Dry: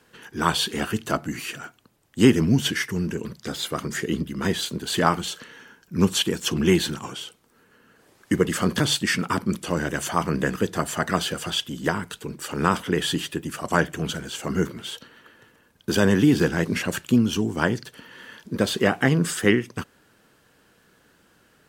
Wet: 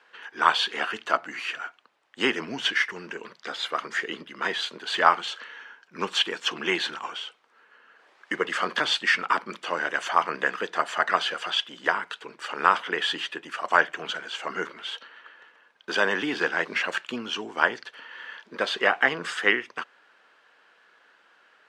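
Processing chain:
band-pass filter 800–3,000 Hz
level +4.5 dB

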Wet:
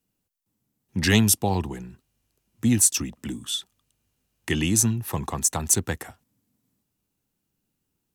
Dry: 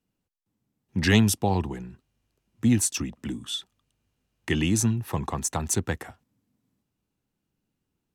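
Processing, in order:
high-shelf EQ 6,200 Hz +11.5 dB

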